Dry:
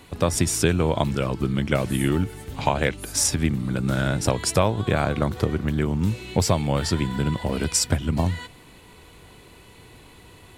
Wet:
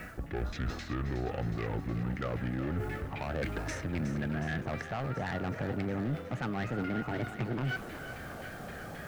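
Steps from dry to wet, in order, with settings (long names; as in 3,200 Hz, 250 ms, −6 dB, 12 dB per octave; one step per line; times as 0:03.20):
gliding playback speed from 65% → 168%
auto-filter low-pass saw down 3.8 Hz 990–2,100 Hz
in parallel at −2.5 dB: brickwall limiter −14.5 dBFS, peak gain reduction 11 dB
on the sum: bit reduction 9 bits
reversed playback
downward compressor 6 to 1, threshold −27 dBFS, peak gain reduction 17 dB
reversed playback
soft clipping −27.5 dBFS, distortion −11 dB
parametric band 1,000 Hz −10 dB 0.3 octaves
feedback echo with a high-pass in the loop 366 ms, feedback 69%, high-pass 420 Hz, level −10 dB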